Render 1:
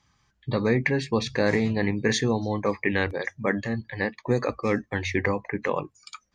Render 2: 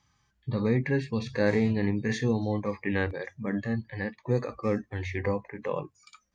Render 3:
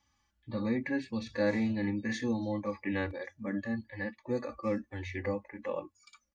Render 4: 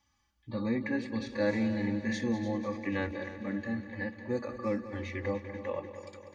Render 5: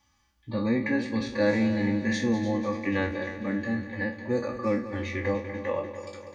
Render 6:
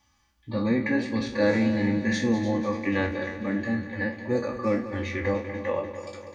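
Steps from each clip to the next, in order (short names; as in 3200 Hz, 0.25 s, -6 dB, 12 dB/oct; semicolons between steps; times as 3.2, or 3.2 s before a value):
harmonic-percussive split percussive -13 dB
comb 3.5 ms, depth 90%; gain -7 dB
multi-head echo 98 ms, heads second and third, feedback 62%, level -13 dB
spectral trails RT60 0.32 s; gain +5 dB
flange 1.6 Hz, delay 0.2 ms, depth 8.8 ms, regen -86%; gain +6 dB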